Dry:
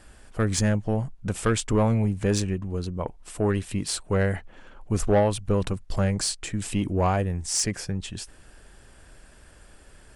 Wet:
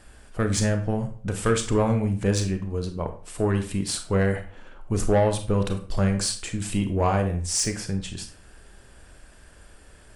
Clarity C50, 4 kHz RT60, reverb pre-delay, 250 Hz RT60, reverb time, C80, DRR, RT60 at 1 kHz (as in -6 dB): 10.5 dB, 0.35 s, 27 ms, 0.45 s, 0.45 s, 15.0 dB, 6.0 dB, 0.40 s